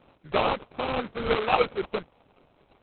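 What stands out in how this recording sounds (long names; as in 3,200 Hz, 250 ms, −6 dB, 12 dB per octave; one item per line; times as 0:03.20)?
aliases and images of a low sample rate 1,800 Hz, jitter 20%
Opus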